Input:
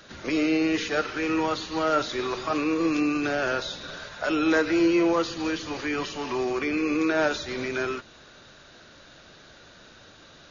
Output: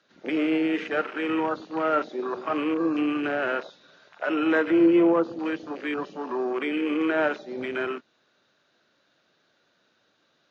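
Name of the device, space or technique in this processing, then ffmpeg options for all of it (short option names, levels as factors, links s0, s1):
over-cleaned archive recording: -filter_complex "[0:a]highpass=180,lowpass=5700,afwtdn=0.0251,asettb=1/sr,asplit=3[s0][s1][s2];[s0]atrim=end=4.704[s3];[s1]atrim=start=4.7:end=5.39,asetpts=PTS-STARTPTS,afade=t=in:d=0.004:c=qsin,afade=t=out:st=0.686:d=0.004:c=qsin,tiltshelf=f=930:g=4.5[s4];[s2]atrim=start=5.386[s5];[s3][s4]acrossfade=d=0.004:c1=hsin:c2=qsin[s6];[s6][s5]acrossfade=d=0.004:c1=qsin:c2=hsin"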